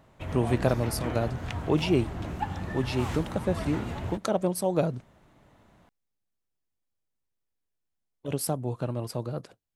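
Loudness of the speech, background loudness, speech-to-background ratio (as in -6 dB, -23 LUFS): -29.5 LUFS, -35.5 LUFS, 6.0 dB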